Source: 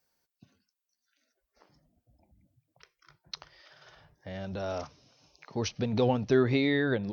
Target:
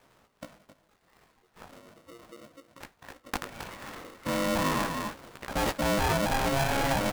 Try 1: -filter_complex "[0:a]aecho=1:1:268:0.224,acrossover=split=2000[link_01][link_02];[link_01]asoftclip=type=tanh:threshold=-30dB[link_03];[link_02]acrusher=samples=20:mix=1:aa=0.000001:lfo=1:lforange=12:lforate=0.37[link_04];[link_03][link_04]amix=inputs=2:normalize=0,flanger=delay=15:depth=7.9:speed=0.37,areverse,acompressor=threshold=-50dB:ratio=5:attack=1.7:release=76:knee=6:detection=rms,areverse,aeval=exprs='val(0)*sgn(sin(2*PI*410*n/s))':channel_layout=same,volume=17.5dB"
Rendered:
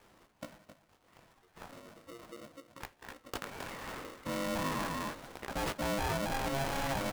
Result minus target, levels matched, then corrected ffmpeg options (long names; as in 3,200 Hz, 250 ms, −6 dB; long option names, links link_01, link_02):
downward compressor: peak gain reduction +7 dB; sample-and-hold swept by an LFO: distortion +9 dB
-filter_complex "[0:a]aecho=1:1:268:0.224,acrossover=split=2000[link_01][link_02];[link_01]asoftclip=type=tanh:threshold=-30dB[link_03];[link_02]acrusher=samples=20:mix=1:aa=0.000001:lfo=1:lforange=12:lforate=0.64[link_04];[link_03][link_04]amix=inputs=2:normalize=0,flanger=delay=15:depth=7.9:speed=0.37,areverse,acompressor=threshold=-41dB:ratio=5:attack=1.7:release=76:knee=6:detection=rms,areverse,aeval=exprs='val(0)*sgn(sin(2*PI*410*n/s))':channel_layout=same,volume=17.5dB"